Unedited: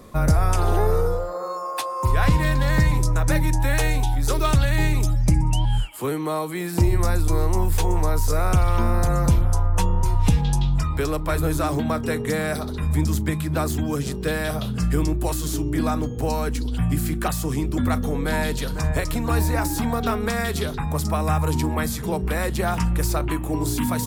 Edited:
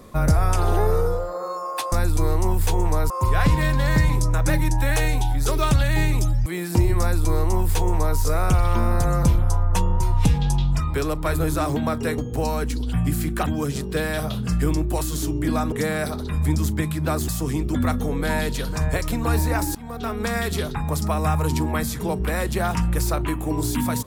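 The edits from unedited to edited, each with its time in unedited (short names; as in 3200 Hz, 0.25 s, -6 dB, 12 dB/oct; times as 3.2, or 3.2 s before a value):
5.28–6.49 cut
7.03–8.21 copy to 1.92
12.21–13.77 swap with 16.03–17.31
19.78–20.36 fade in linear, from -22.5 dB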